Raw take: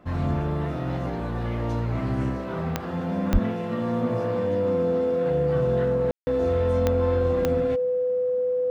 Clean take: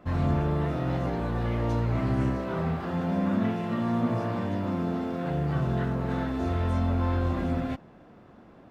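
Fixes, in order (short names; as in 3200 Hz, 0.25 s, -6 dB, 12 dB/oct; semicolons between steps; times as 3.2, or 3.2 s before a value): de-click; notch 500 Hz, Q 30; 3.32–3.44 HPF 140 Hz 24 dB/oct; room tone fill 6.11–6.27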